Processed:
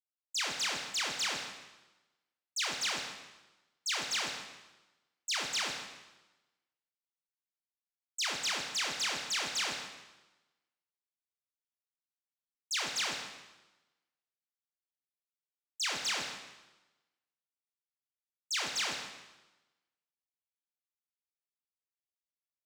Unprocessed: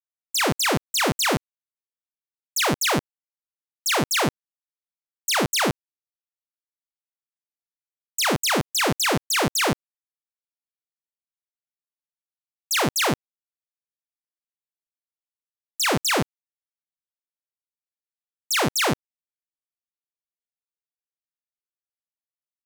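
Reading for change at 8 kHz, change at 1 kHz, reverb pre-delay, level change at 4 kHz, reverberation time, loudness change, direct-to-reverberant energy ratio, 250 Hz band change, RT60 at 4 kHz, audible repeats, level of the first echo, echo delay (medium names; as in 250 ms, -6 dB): -10.5 dB, -15.5 dB, 7 ms, -8.0 dB, 1.1 s, -11.0 dB, 2.5 dB, -24.5 dB, 1.0 s, 1, -13.5 dB, 156 ms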